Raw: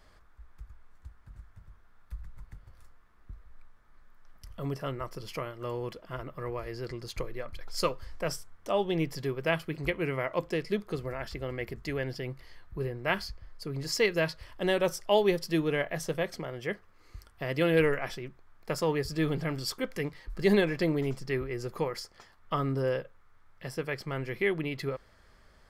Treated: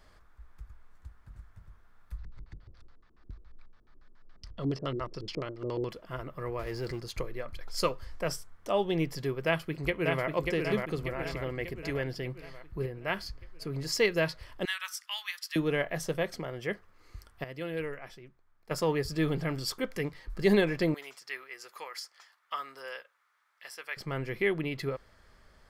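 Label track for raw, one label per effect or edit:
2.180000	5.900000	auto-filter low-pass square 7.1 Hz 350–4,600 Hz
6.590000	7.000000	mu-law and A-law mismatch coded by mu
9.460000	10.260000	delay throw 590 ms, feedback 55%, level −3.5 dB
12.860000	13.260000	clip gain −3.5 dB
14.650000	15.560000	Butterworth high-pass 1,200 Hz
17.440000	18.710000	clip gain −11 dB
20.940000	23.970000	high-pass filter 1,200 Hz

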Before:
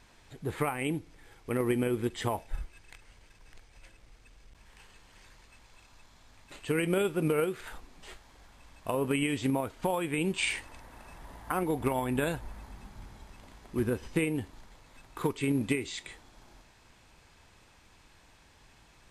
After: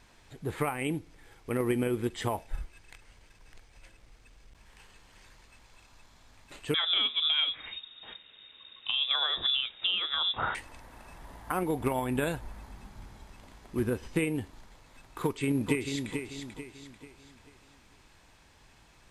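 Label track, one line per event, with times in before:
6.740000	10.550000	voice inversion scrambler carrier 3,700 Hz
15.220000	16.090000	delay throw 440 ms, feedback 40%, level −6.5 dB

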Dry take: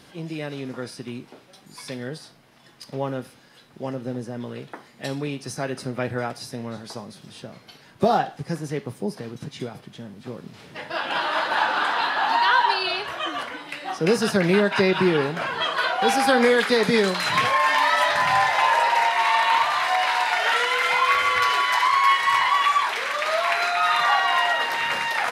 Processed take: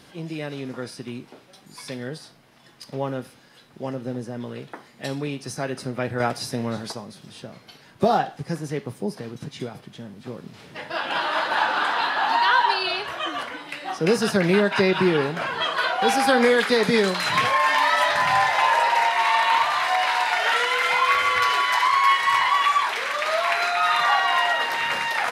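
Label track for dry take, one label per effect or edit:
6.200000	6.920000	clip gain +5.5 dB

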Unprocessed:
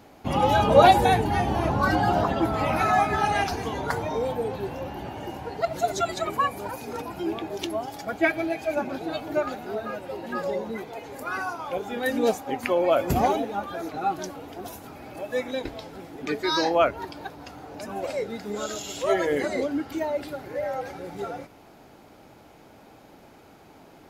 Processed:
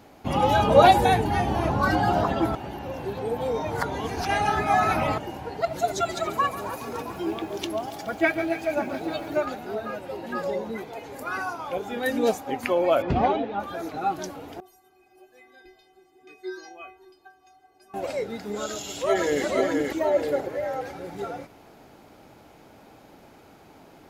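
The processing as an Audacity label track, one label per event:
2.550000	5.180000	reverse
5.860000	9.450000	feedback echo at a low word length 140 ms, feedback 80%, word length 8 bits, level −14.5 dB
13.020000	13.600000	low-pass filter 3,900 Hz 24 dB per octave
14.600000	17.940000	stiff-string resonator 370 Hz, decay 0.37 s, inharmonicity 0.008
18.670000	19.440000	delay throw 480 ms, feedback 35%, level −3 dB
19.990000	20.480000	parametric band 520 Hz +3 dB → +12.5 dB 1.4 octaves

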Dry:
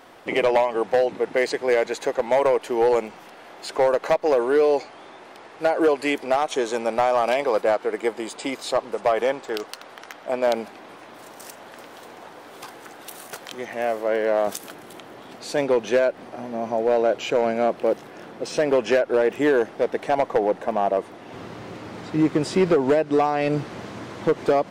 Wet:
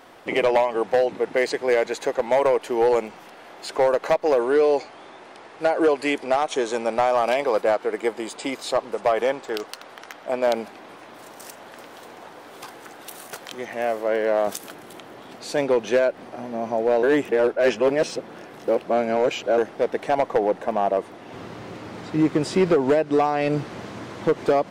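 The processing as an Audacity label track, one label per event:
4.430000	7.030000	Butterworth low-pass 11,000 Hz
17.030000	19.580000	reverse

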